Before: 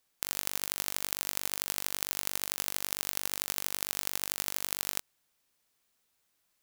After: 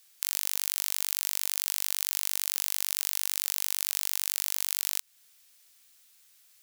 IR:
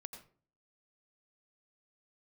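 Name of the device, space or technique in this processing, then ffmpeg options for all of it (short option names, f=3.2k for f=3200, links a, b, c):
mastering chain: -af "equalizer=f=1k:t=o:w=0.32:g=-3,acompressor=threshold=-39dB:ratio=2,asoftclip=type=tanh:threshold=-9dB,tiltshelf=f=1.3k:g=-8.5,asoftclip=type=hard:threshold=-7dB,alimiter=level_in=8.5dB:limit=-1dB:release=50:level=0:latency=1,volume=-1dB"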